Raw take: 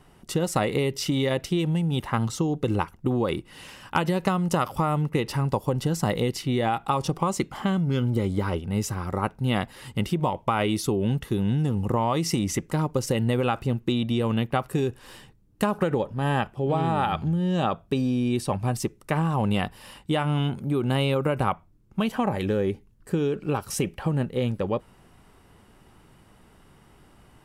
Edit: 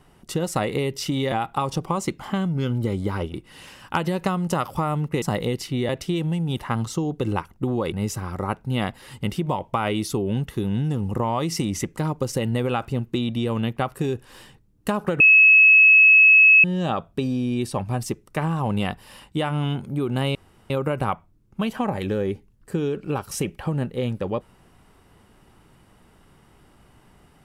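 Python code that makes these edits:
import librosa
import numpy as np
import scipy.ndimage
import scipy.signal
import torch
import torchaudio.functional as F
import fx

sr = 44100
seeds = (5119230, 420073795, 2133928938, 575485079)

y = fx.edit(x, sr, fx.swap(start_s=1.32, length_s=2.03, other_s=6.64, other_length_s=2.02),
    fx.cut(start_s=5.23, length_s=0.74),
    fx.bleep(start_s=15.94, length_s=1.44, hz=2580.0, db=-9.0),
    fx.insert_room_tone(at_s=21.09, length_s=0.35), tone=tone)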